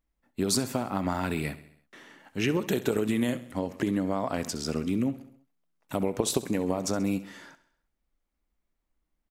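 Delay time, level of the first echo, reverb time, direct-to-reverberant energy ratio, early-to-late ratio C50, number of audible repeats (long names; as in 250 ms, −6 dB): 66 ms, −16.0 dB, no reverb audible, no reverb audible, no reverb audible, 4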